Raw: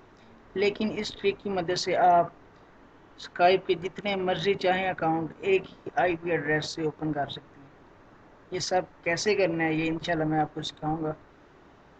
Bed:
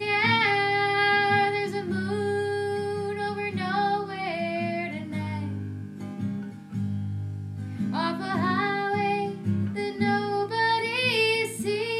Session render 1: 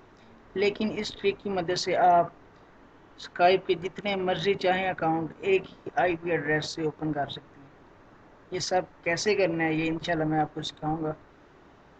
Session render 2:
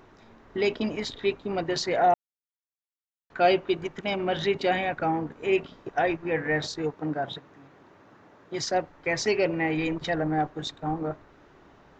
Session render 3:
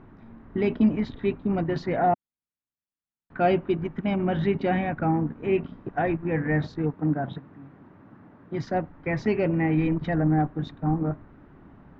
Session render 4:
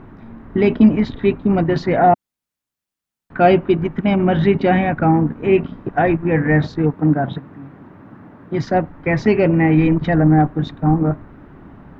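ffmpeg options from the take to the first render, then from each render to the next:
-af anull
-filter_complex "[0:a]asettb=1/sr,asplit=3[a][b][c];[a]atrim=end=6.944[d];[b]atrim=start=6.94:end=8.64,asetpts=PTS-STARTPTS,afade=t=in:d=0.004:c=qsin,afade=t=out:st=1.696:d=0.004:c=qsin,highpass=110[e];[c]atrim=start=8.636[f];[d][e]acrossfade=d=0.004:c1=hsin:c2=qsin[g];[g][f]acrossfade=d=0.004:c1=qsin:c2=hsin,asplit=3[h][i][j];[h]atrim=end=2.14,asetpts=PTS-STARTPTS,afade=t=out:st=2.136:d=0.004:c=hsin[k];[i]atrim=start=2.14:end=3.3,asetpts=PTS-STARTPTS,volume=0[l];[j]atrim=start=3.3,asetpts=PTS-STARTPTS,afade=t=in:d=0.004:c=hsin[m];[k][l][m]concat=n=3:v=0:a=1"
-af "lowpass=1.9k,lowshelf=f=320:t=q:w=1.5:g=8"
-af "volume=9.5dB"

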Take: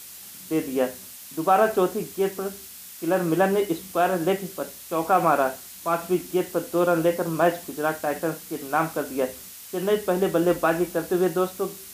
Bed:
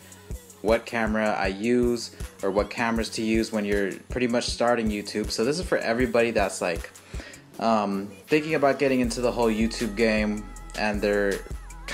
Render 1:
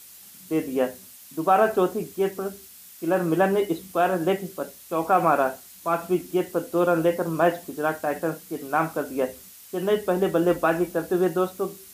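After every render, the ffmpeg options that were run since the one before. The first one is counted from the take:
-af "afftdn=nr=6:nf=-42"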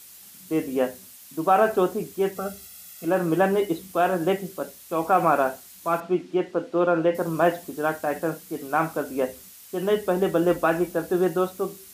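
-filter_complex "[0:a]asettb=1/sr,asplit=3[a][b][c];[a]atrim=end=2.364[d];[b]atrim=start=2.36:end=3.05,asetpts=PTS-STARTPTS,afade=t=in:d=0.004:c=qsin,afade=t=out:st=0.686:d=0.004:c=qsin,aecho=1:1:1.5:0.88,atrim=end_sample=30429[e];[c]atrim=start=3.046[f];[d][e]acrossfade=d=0.004:c1=hsin:c2=qsin[g];[g][f]acrossfade=d=0.004:c1=qsin:c2=hsin,asettb=1/sr,asplit=3[h][i][j];[h]atrim=end=6.004[k];[i]atrim=start=6:end=7.15,asetpts=PTS-STARTPTS,afade=t=in:d=0.004:c=qsin,afade=t=out:st=1.146:d=0.004:c=qsin,highpass=150,lowpass=3.7k[l];[j]atrim=start=7.146[m];[k][l]acrossfade=d=0.004:c1=hsin:c2=qsin[n];[n][m]acrossfade=d=0.004:c1=qsin:c2=hsin"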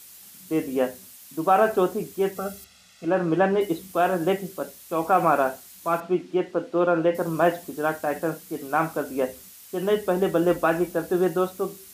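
-filter_complex "[0:a]asettb=1/sr,asplit=3[a][b][c];[a]atrim=end=2.644[d];[b]atrim=start=2.64:end=3.61,asetpts=PTS-STARTPTS,afade=t=in:d=0.004:c=qsin,afade=t=out:st=0.966:d=0.004:c=qsin,lowpass=4.8k[e];[c]atrim=start=3.606[f];[d][e]acrossfade=d=0.004:c1=hsin:c2=qsin[g];[g][f]acrossfade=d=0.004:c1=qsin:c2=hsin"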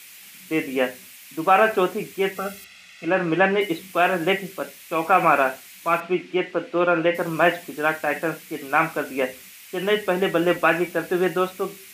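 -af "highpass=100,equalizer=f=2.3k:w=1.3:g=15"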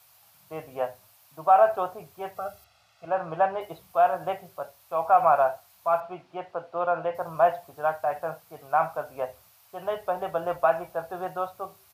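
-af "firequalizer=gain_entry='entry(130,0);entry(190,-20);entry(310,-22);entry(660,2);entry(1200,-5);entry(2000,-23);entry(4500,-13);entry(7500,-18);entry(13000,-11)':delay=0.05:min_phase=1"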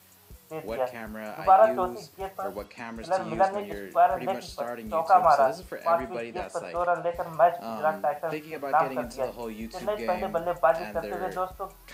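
-filter_complex "[1:a]volume=-13.5dB[a];[0:a][a]amix=inputs=2:normalize=0"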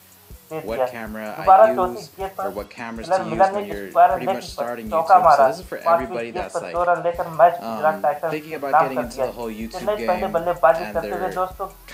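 -af "volume=7dB,alimiter=limit=-2dB:level=0:latency=1"

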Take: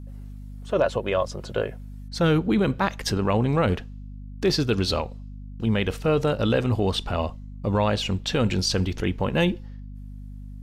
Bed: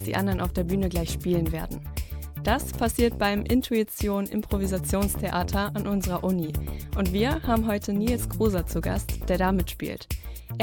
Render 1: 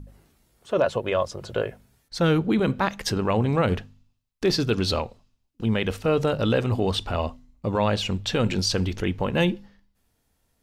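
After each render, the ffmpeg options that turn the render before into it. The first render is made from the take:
-af "bandreject=f=50:t=h:w=4,bandreject=f=100:t=h:w=4,bandreject=f=150:t=h:w=4,bandreject=f=200:t=h:w=4,bandreject=f=250:t=h:w=4"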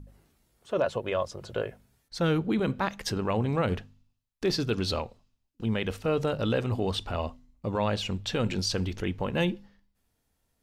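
-af "volume=-5dB"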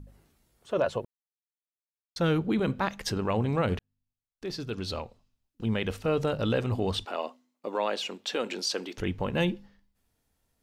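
-filter_complex "[0:a]asettb=1/sr,asplit=3[a][b][c];[a]atrim=end=7.054[d];[b]atrim=start=7.05:end=8.98,asetpts=PTS-STARTPTS,afade=t=in:d=0.004:c=qsin,afade=t=out:st=1.926:d=0.004:c=qsin,highpass=f=290:w=0.5412,highpass=f=290:w=1.3066[e];[c]atrim=start=8.976[f];[d][e]acrossfade=d=0.004:c1=hsin:c2=qsin[g];[g][f]acrossfade=d=0.004:c1=qsin:c2=hsin,asplit=4[h][i][j][k];[h]atrim=end=1.05,asetpts=PTS-STARTPTS,afade=t=out:st=1.046:d=0.004:c=hsin[l];[i]atrim=start=1.05:end=2.16,asetpts=PTS-STARTPTS,volume=0[m];[j]atrim=start=2.16:end=3.79,asetpts=PTS-STARTPTS,afade=t=in:d=0.004:c=hsin,afade=t=out:st=1.626:d=0.004:c=hsin[n];[k]atrim=start=3.79,asetpts=PTS-STARTPTS,afade=t=in:d=1.92[o];[l][m][n][o]concat=n=4:v=0:a=1"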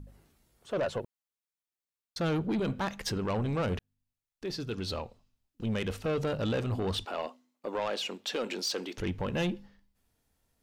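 -af "asoftclip=type=tanh:threshold=-25dB"

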